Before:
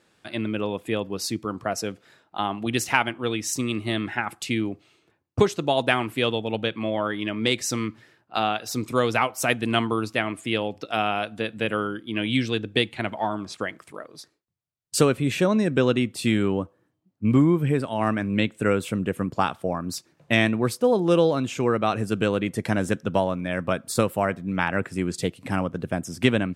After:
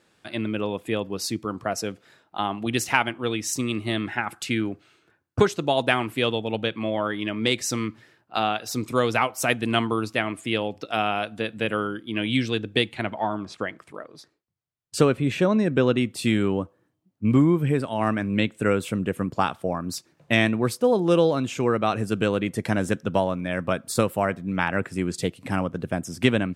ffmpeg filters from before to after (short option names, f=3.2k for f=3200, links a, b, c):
-filter_complex "[0:a]asettb=1/sr,asplit=3[a][b][c];[a]atrim=end=4.334[d];[b]atrim=start=4.33:end=5.47,asetpts=PTS-STARTPTS,afade=t=in:d=0.004:c=qsin,afade=t=out:st=1.136:d=0.004:c=qsin,equalizer=f=1.5k:w=3.9:g=11[e];[c]atrim=start=5.466[f];[d][e]acrossfade=d=0.004:c1=hsin:c2=qsin[g];[g][f]acrossfade=d=0.004:c1=qsin:c2=hsin,asettb=1/sr,asplit=3[h][i][j];[h]atrim=end=13.034[k];[i]atrim=start=13.03:end=15.98,asetpts=PTS-STARTPTS,afade=t=in:d=0.004:c=qsin,afade=t=out:st=2.946:d=0.004:c=qsin,aemphasis=mode=reproduction:type=cd[l];[j]atrim=start=15.976[m];[k][l]acrossfade=d=0.004:c1=hsin:c2=qsin[n];[n][m]acrossfade=d=0.004:c1=qsin:c2=hsin"